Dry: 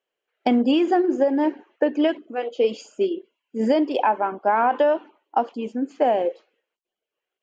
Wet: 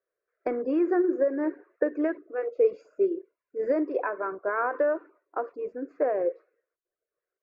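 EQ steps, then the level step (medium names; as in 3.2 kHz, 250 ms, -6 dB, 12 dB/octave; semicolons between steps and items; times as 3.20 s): low-pass 1.7 kHz 12 dB/octave; dynamic bell 630 Hz, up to -5 dB, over -34 dBFS, Q 2.5; static phaser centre 840 Hz, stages 6; 0.0 dB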